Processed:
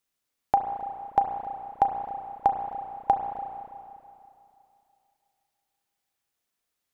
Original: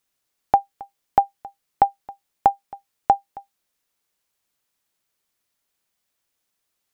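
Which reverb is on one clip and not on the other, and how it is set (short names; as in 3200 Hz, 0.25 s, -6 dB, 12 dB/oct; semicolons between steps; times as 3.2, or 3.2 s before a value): spring tank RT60 2.7 s, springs 32/36 ms, chirp 45 ms, DRR 4 dB; gain -5.5 dB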